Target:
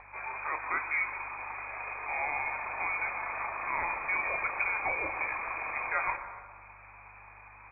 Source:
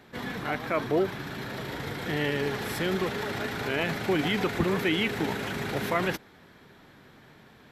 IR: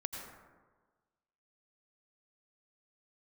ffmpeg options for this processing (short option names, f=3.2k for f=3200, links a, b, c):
-filter_complex "[0:a]lowpass=f=2.2k:t=q:w=0.5098,lowpass=f=2.2k:t=q:w=0.6013,lowpass=f=2.2k:t=q:w=0.9,lowpass=f=2.2k:t=q:w=2.563,afreqshift=-2600,equalizer=f=500:t=o:w=1:g=-5,equalizer=f=1k:t=o:w=1:g=4,equalizer=f=2k:t=o:w=1:g=-8,acompressor=mode=upward:threshold=-45dB:ratio=2.5,aeval=exprs='val(0)+0.00141*(sin(2*PI*50*n/s)+sin(2*PI*2*50*n/s)/2+sin(2*PI*3*50*n/s)/3+sin(2*PI*4*50*n/s)/4+sin(2*PI*5*50*n/s)/5)':c=same,equalizer=f=190:w=0.94:g=-11,asplit=2[a][b];[b]adelay=291.5,volume=-20dB,highshelf=f=4k:g=-6.56[c];[a][c]amix=inputs=2:normalize=0,asplit=2[d][e];[1:a]atrim=start_sample=2205,lowpass=f=1.7k:p=1,adelay=30[f];[e][f]afir=irnorm=-1:irlink=0,volume=-5dB[g];[d][g]amix=inputs=2:normalize=0"